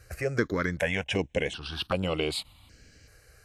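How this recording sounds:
notches that jump at a steady rate 2.6 Hz 940–6,100 Hz

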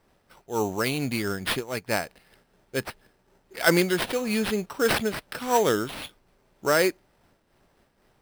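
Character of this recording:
aliases and images of a low sample rate 6,800 Hz, jitter 0%
amplitude modulation by smooth noise

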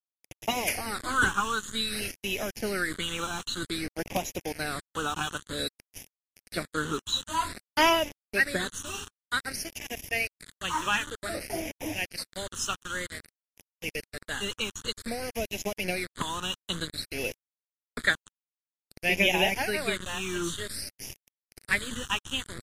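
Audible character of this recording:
a quantiser's noise floor 6 bits, dither none
phaser sweep stages 8, 0.53 Hz, lowest notch 630–1,300 Hz
MP3

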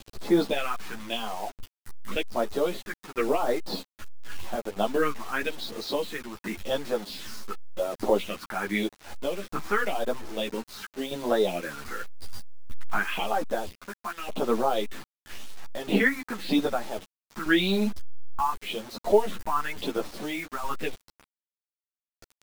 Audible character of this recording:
tremolo saw down 0.63 Hz, depth 70%
phaser sweep stages 4, 0.91 Hz, lowest notch 510–2,900 Hz
a quantiser's noise floor 8 bits, dither none
a shimmering, thickened sound

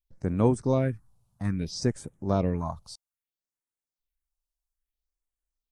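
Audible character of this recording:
phaser sweep stages 4, 0.61 Hz, lowest notch 300–4,600 Hz

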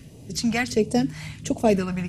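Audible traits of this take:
phaser sweep stages 2, 1.4 Hz, lowest notch 390–1,500 Hz

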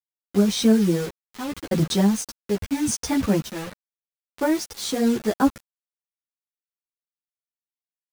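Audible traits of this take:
sample-and-hold tremolo, depth 75%
a quantiser's noise floor 6 bits, dither none
a shimmering, thickened sound

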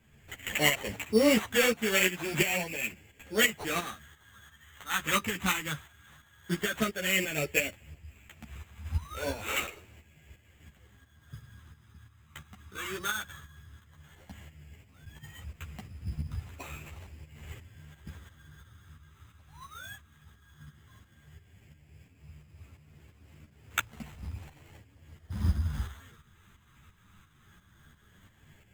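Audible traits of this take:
phaser sweep stages 8, 0.14 Hz, lowest notch 620–1,500 Hz
tremolo saw up 2.9 Hz, depth 65%
aliases and images of a low sample rate 5,000 Hz, jitter 0%
a shimmering, thickened sound

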